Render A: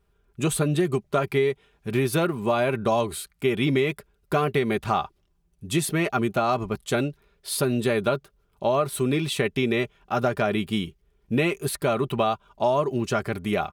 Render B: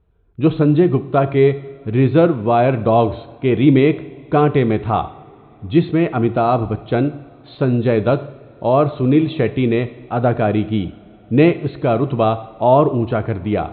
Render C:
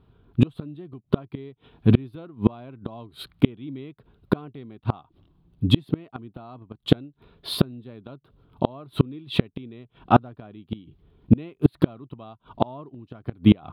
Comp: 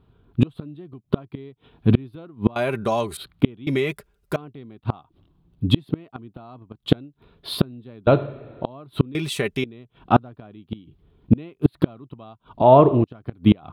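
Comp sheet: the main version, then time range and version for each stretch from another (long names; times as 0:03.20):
C
0:02.56–0:03.17: punch in from A
0:03.67–0:04.36: punch in from A
0:08.07–0:08.65: punch in from B
0:09.15–0:09.64: punch in from A
0:12.62–0:13.04: punch in from B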